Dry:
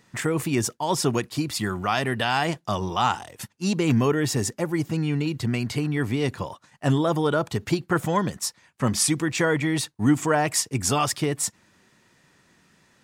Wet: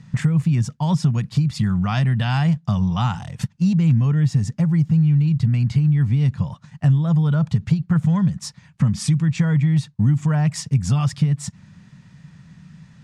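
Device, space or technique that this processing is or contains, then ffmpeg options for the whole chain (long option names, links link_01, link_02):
jukebox: -af "lowpass=6800,lowshelf=frequency=240:width_type=q:width=3:gain=13.5,acompressor=threshold=-22dB:ratio=3,volume=3dB"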